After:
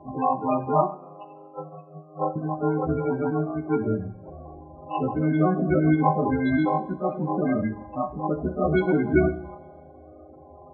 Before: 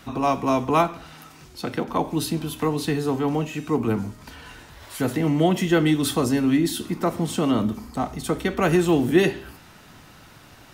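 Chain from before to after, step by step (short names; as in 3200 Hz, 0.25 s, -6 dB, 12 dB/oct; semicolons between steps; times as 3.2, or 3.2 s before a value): frequency quantiser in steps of 3 st; 0.95–2.36 Chebyshev high-pass 2600 Hz, order 10; sample-and-hold 24×; loudest bins only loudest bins 16; two-slope reverb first 0.67 s, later 2.6 s, from -20 dB, DRR 11 dB; gain -1.5 dB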